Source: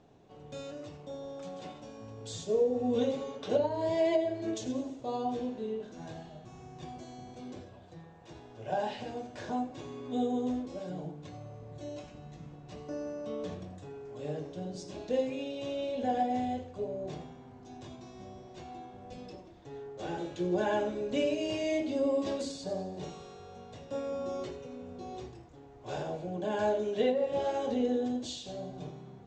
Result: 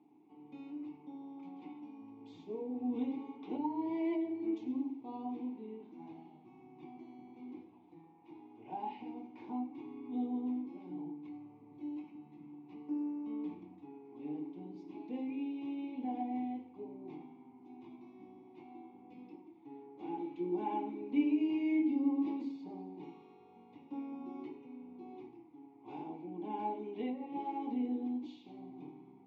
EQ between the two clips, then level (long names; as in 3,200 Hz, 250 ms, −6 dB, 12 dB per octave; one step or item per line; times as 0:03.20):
formant filter u
high-pass filter 120 Hz
high-frequency loss of the air 140 metres
+6.5 dB